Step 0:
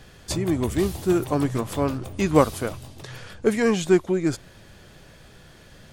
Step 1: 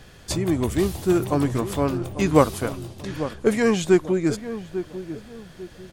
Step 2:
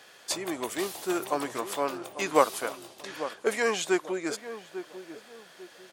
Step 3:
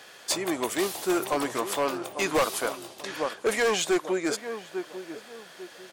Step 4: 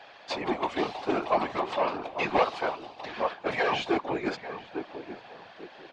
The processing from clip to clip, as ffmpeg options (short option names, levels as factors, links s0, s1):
-filter_complex "[0:a]asplit=2[s0][s1];[s1]adelay=846,lowpass=f=1000:p=1,volume=0.282,asplit=2[s2][s3];[s3]adelay=846,lowpass=f=1000:p=1,volume=0.35,asplit=2[s4][s5];[s5]adelay=846,lowpass=f=1000:p=1,volume=0.35,asplit=2[s6][s7];[s7]adelay=846,lowpass=f=1000:p=1,volume=0.35[s8];[s0][s2][s4][s6][s8]amix=inputs=5:normalize=0,volume=1.12"
-af "highpass=570,volume=0.891"
-af "volume=15,asoftclip=hard,volume=0.0668,volume=1.68"
-af "highpass=140,equalizer=f=250:t=q:w=4:g=-8,equalizer=f=430:t=q:w=4:g=-10,equalizer=f=780:t=q:w=4:g=6,equalizer=f=1400:t=q:w=4:g=-5,equalizer=f=1900:t=q:w=4:g=-4,equalizer=f=3300:t=q:w=4:g=-5,lowpass=f=3700:w=0.5412,lowpass=f=3700:w=1.3066,afftfilt=real='hypot(re,im)*cos(2*PI*random(0))':imag='hypot(re,im)*sin(2*PI*random(1))':win_size=512:overlap=0.75,volume=2.37"